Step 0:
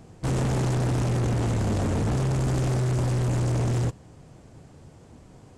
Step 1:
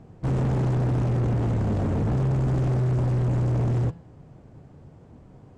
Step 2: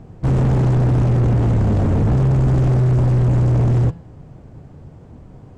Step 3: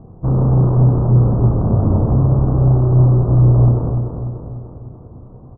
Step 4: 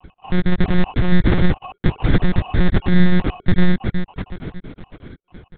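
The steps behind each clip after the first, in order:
low-pass 1.3 kHz 6 dB/octave; peaking EQ 150 Hz +2.5 dB 0.77 oct; de-hum 167.9 Hz, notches 32
bass shelf 80 Hz +7 dB; trim +6 dB
elliptic low-pass 1.2 kHz, stop band 60 dB; doubling 32 ms -6 dB; on a send: feedback delay 294 ms, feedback 55%, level -6.5 dB
random holes in the spectrogram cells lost 44%; sample-and-hold 24×; monotone LPC vocoder at 8 kHz 180 Hz; trim +1.5 dB

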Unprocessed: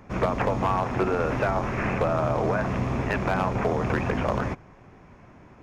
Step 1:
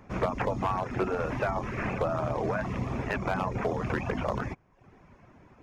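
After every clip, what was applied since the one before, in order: reverb removal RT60 0.66 s; trim -3.5 dB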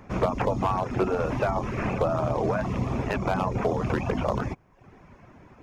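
dynamic bell 1.8 kHz, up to -6 dB, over -48 dBFS, Q 1.6; trim +4.5 dB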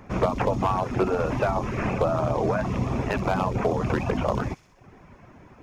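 feedback echo behind a high-pass 64 ms, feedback 62%, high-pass 4.4 kHz, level -6 dB; trim +1.5 dB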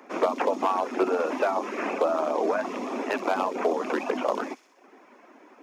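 steep high-pass 250 Hz 48 dB/octave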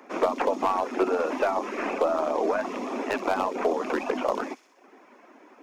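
tracing distortion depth 0.032 ms

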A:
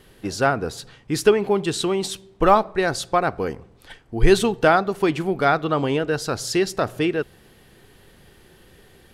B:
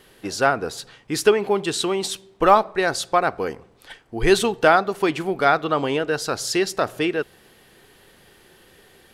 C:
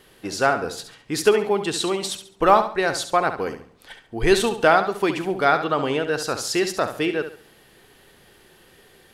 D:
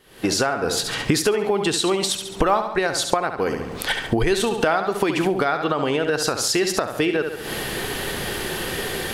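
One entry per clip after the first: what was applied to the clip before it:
bass shelf 220 Hz -11 dB; trim +2 dB
flutter echo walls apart 11.8 m, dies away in 0.42 s; trim -1 dB
recorder AGC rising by 73 dB/s; trim -4.5 dB

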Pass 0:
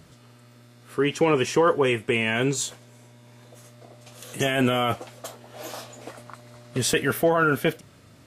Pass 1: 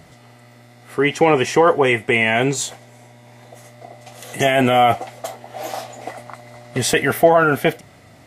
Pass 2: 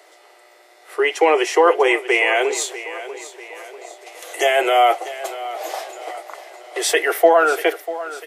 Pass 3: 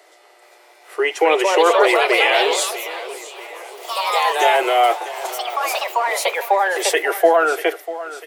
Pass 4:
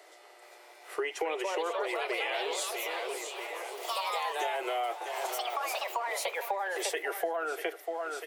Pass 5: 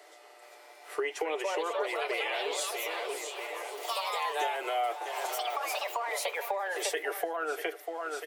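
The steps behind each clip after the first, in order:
small resonant body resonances 740/2000 Hz, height 12 dB, ringing for 20 ms; trim +4 dB
steep high-pass 330 Hz 96 dB/octave; feedback delay 643 ms, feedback 46%, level -14.5 dB
ever faster or slower copies 422 ms, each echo +3 st, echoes 3; trim -1 dB
compression 6:1, threshold -26 dBFS, peak gain reduction 16.5 dB; trim -4.5 dB
comb 6.8 ms, depth 38%; short-mantissa float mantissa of 8-bit

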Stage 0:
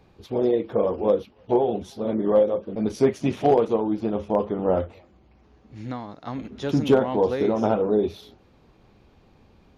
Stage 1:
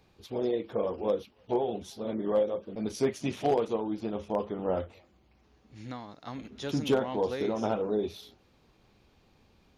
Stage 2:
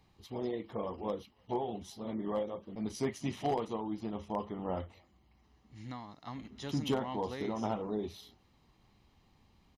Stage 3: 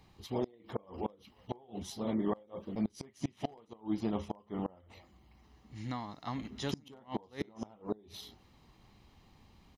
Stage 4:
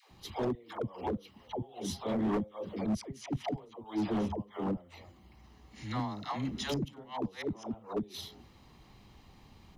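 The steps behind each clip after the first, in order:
treble shelf 2.2 kHz +9.5 dB; trim -8.5 dB
comb 1 ms, depth 45%; trim -4.5 dB
inverted gate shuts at -27 dBFS, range -28 dB; trim +5 dB
phase dispersion lows, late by 110 ms, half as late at 470 Hz; hard clipper -31.5 dBFS, distortion -12 dB; trim +4.5 dB

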